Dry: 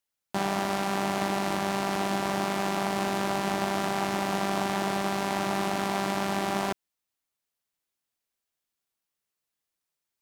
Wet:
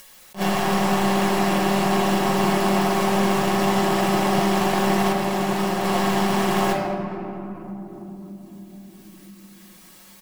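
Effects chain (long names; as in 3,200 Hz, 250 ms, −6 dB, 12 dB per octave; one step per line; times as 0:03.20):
in parallel at −7.5 dB: wrap-around overflow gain 20 dB
0:05.12–0:05.84: on the sum: downward expander −22 dBFS
comb filter 5.5 ms, depth 59%
tape delay 215 ms, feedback 48%, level −15 dB, low-pass 3,700 Hz
convolution reverb RT60 2.3 s, pre-delay 4 ms, DRR −1.5 dB
upward compression, threshold −24 dBFS
level that may rise only so fast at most 300 dB per second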